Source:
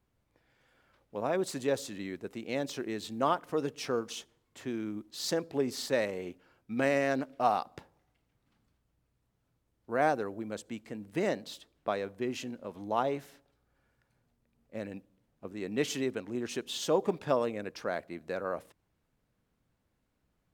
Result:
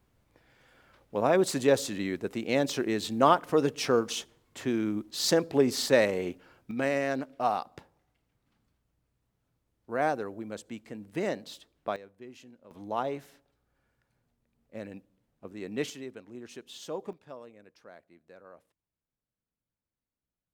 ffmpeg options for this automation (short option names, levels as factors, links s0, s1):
-af "asetnsamples=n=441:p=0,asendcmd='6.71 volume volume -0.5dB;11.96 volume volume -13dB;12.71 volume volume -1.5dB;15.9 volume volume -9dB;17.13 volume volume -17dB',volume=2.24"